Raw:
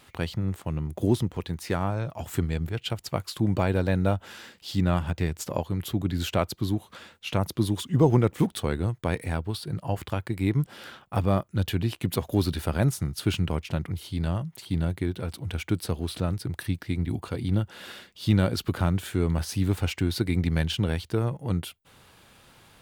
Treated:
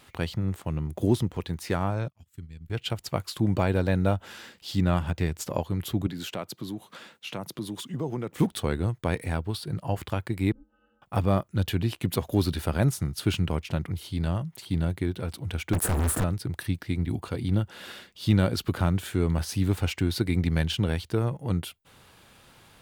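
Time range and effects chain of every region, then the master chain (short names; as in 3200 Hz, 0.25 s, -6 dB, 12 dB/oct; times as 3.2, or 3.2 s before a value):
2.08–2.7 gate -34 dBFS, range -7 dB + transient shaper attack +1 dB, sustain -10 dB + passive tone stack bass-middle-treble 6-0-2
6.07–8.34 HPF 130 Hz 24 dB/oct + compressor 2:1, threshold -35 dBFS
10.52–11.02 high shelf 2100 Hz -11 dB + octave resonator F, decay 0.42 s + ring modulator 130 Hz
15.73–16.24 Chebyshev band-stop 1800–6900 Hz, order 5 + sample leveller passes 5 + hard clip -22.5 dBFS
whole clip: dry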